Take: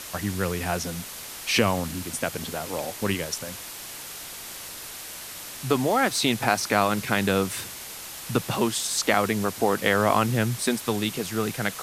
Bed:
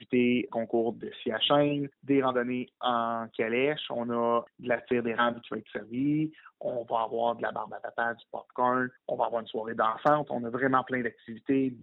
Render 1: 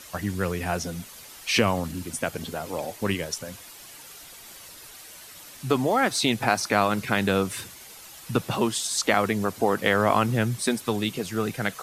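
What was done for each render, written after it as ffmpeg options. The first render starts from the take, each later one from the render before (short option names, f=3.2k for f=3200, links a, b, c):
-af "afftdn=nr=9:nf=-39"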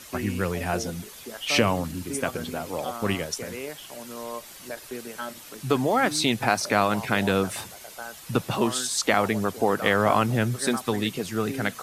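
-filter_complex "[1:a]volume=-9dB[a];[0:a][a]amix=inputs=2:normalize=0"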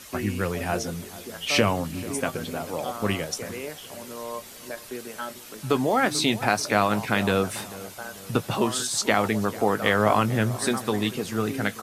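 -filter_complex "[0:a]asplit=2[a][b];[b]adelay=19,volume=-13dB[c];[a][c]amix=inputs=2:normalize=0,asplit=2[d][e];[e]adelay=441,lowpass=f=2k:p=1,volume=-17dB,asplit=2[f][g];[g]adelay=441,lowpass=f=2k:p=1,volume=0.48,asplit=2[h][i];[i]adelay=441,lowpass=f=2k:p=1,volume=0.48,asplit=2[j][k];[k]adelay=441,lowpass=f=2k:p=1,volume=0.48[l];[d][f][h][j][l]amix=inputs=5:normalize=0"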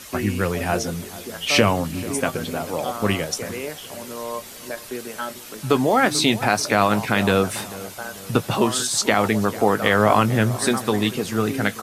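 -af "volume=4.5dB,alimiter=limit=-3dB:level=0:latency=1"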